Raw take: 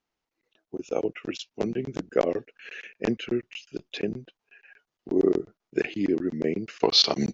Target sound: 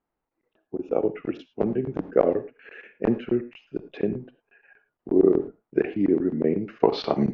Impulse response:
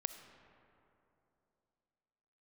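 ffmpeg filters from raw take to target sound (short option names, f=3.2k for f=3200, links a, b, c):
-filter_complex "[0:a]lowpass=1.3k[a];[1:a]atrim=start_sample=2205,atrim=end_sample=6615,asetrate=57330,aresample=44100[b];[a][b]afir=irnorm=-1:irlink=0,volume=7.5dB"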